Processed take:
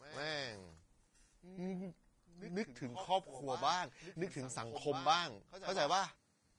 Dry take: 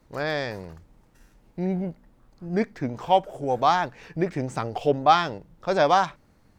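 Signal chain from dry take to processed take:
first-order pre-emphasis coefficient 0.8
echo ahead of the sound 147 ms −13 dB
level −3 dB
Ogg Vorbis 32 kbit/s 22,050 Hz

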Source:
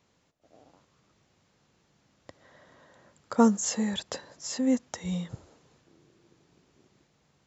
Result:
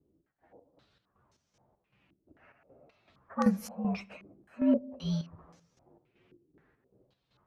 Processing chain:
partials spread apart or drawn together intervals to 117%
square-wave tremolo 2.6 Hz, depth 65%, duty 55%
on a send at −22 dB: convolution reverb RT60 0.95 s, pre-delay 10 ms
on the sum: low-pass on a step sequencer 3.8 Hz 340–5,900 Hz

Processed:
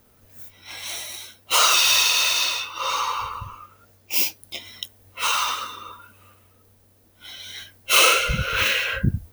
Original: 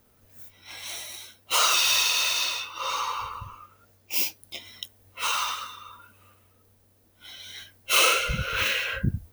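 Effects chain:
0:05.45–0:05.92: parametric band 360 Hz +5 dB → +13.5 dB 1.4 octaves
level +4.5 dB

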